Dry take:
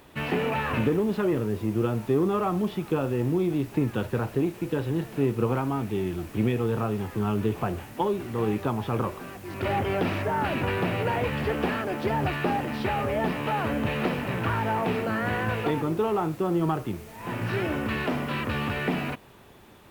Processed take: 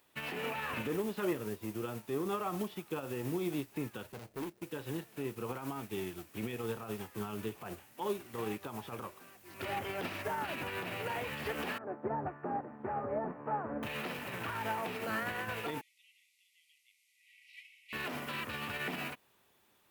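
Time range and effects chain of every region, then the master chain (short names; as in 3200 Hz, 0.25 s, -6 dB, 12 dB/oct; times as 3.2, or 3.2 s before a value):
4.12–4.63 median filter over 41 samples + high shelf 7800 Hz +7 dB + hard clip -24.5 dBFS
11.78–13.83 Bessel low-pass 910 Hz, order 6 + low shelf 67 Hz -11.5 dB
15.81–17.93 brick-wall FIR band-pass 1900–13000 Hz + tilt -3 dB/oct
whole clip: tilt +2.5 dB/oct; limiter -24 dBFS; upward expander 2.5:1, over -41 dBFS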